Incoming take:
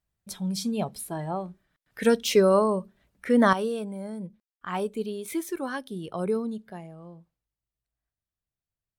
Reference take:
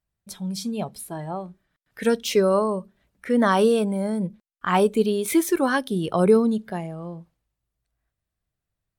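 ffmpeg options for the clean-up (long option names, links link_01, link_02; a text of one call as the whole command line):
ffmpeg -i in.wav -af "asetnsamples=nb_out_samples=441:pad=0,asendcmd='3.53 volume volume 10.5dB',volume=0dB" out.wav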